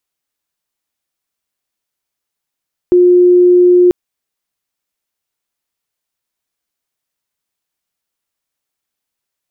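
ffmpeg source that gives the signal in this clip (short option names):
-f lavfi -i "aevalsrc='0.631*sin(2*PI*357*t)':d=0.99:s=44100"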